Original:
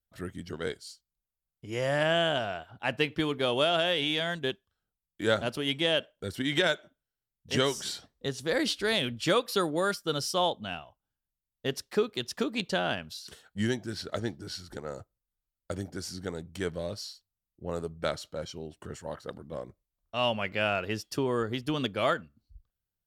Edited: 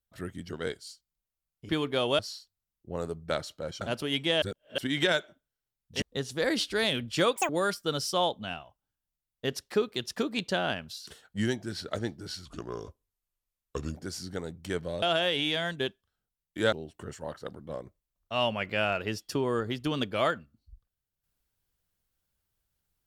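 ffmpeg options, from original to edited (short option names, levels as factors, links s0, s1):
-filter_complex "[0:a]asplit=13[s0][s1][s2][s3][s4][s5][s6][s7][s8][s9][s10][s11][s12];[s0]atrim=end=1.692[s13];[s1]atrim=start=3.158:end=3.662[s14];[s2]atrim=start=16.928:end=18.552[s15];[s3]atrim=start=5.358:end=5.972[s16];[s4]atrim=start=5.968:end=6.332,asetpts=PTS-STARTPTS,areverse[s17];[s5]atrim=start=6.328:end=7.572[s18];[s6]atrim=start=8.108:end=9.454[s19];[s7]atrim=start=9.45:end=9.7,asetpts=PTS-STARTPTS,asetrate=84231,aresample=44100,atrim=end_sample=5772,asetpts=PTS-STARTPTS[s20];[s8]atrim=start=9.696:end=14.664[s21];[s9]atrim=start=14.66:end=15.87,asetpts=PTS-STARTPTS,asetrate=35280,aresample=44100,atrim=end_sample=66701,asetpts=PTS-STARTPTS[s22];[s10]atrim=start=15.866:end=16.932[s23];[s11]atrim=start=3.658:end=5.362[s24];[s12]atrim=start=18.548[s25];[s13][s14]acrossfade=d=0.004:c1=hsin:c2=hsin[s26];[s26][s15]acrossfade=d=0.004:c1=hsin:c2=hsin[s27];[s27][s16]acrossfade=d=0.004:c1=hsin:c2=hsin[s28];[s28][s17]acrossfade=d=0.004:c1=hsin:c2=hsin[s29];[s29][s18]acrossfade=d=0.004:c1=hsin:c2=hsin[s30];[s30][s19]acrossfade=d=0.004:c1=hsin:c2=hsin[s31];[s31][s20]acrossfade=d=0.004:c1=hsin:c2=hsin[s32];[s32][s21]acrossfade=d=0.004:c1=hsin:c2=hsin[s33];[s33][s22]acrossfade=d=0.004:c1=hsin:c2=hsin[s34];[s34][s23]acrossfade=d=0.004:c1=hsin:c2=hsin[s35];[s35][s24]acrossfade=d=0.004:c1=hsin:c2=hsin[s36];[s36][s25]acrossfade=d=0.004:c1=hsin:c2=hsin"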